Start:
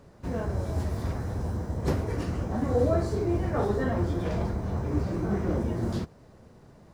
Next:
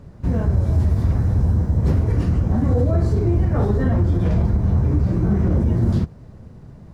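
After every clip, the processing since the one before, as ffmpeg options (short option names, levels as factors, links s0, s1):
-af "bass=f=250:g=12,treble=f=4000:g=-3,alimiter=limit=0.224:level=0:latency=1:release=46,volume=1.41"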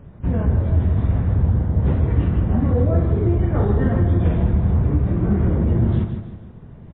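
-af "aecho=1:1:156|312|468|624|780:0.398|0.171|0.0736|0.0317|0.0136" -ar 8000 -c:a libmp3lame -b:a 16k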